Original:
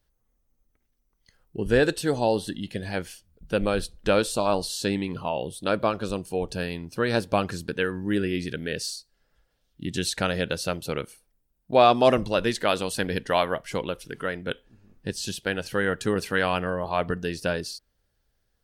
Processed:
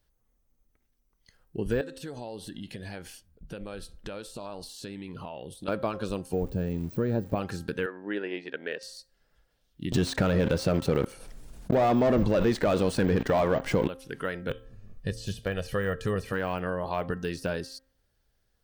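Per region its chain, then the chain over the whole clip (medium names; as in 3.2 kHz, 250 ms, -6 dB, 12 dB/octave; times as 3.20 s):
1.81–5.68 s: compression 8:1, threshold -35 dBFS + tape noise reduction on one side only decoder only
6.33–7.35 s: zero-crossing glitches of -26 dBFS + de-esser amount 60% + bass shelf 450 Hz +9 dB
7.86–8.83 s: transient shaper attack +2 dB, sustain -8 dB + band-pass 430–2400 Hz
9.92–13.88 s: low-pass 9.8 kHz + waveshaping leveller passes 3 + level flattener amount 50%
14.49–16.33 s: bass shelf 94 Hz +10.5 dB + comb 1.7 ms, depth 53% + de-hum 113 Hz, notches 4
whole clip: de-esser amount 100%; de-hum 265.1 Hz, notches 7; compression 2:1, threshold -28 dBFS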